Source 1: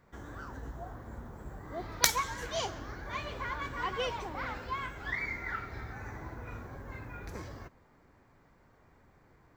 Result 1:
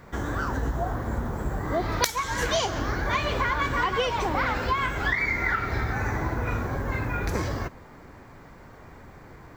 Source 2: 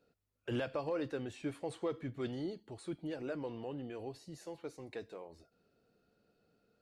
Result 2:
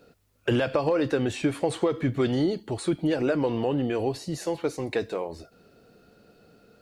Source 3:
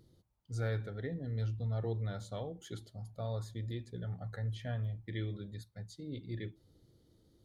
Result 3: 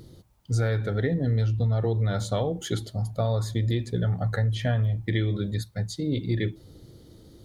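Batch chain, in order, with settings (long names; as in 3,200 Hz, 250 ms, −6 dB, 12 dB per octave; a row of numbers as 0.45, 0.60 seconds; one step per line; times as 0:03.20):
downward compressor 20 to 1, threshold −37 dBFS
loudness normalisation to −27 LKFS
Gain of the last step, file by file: +16.0, +17.5, +17.0 decibels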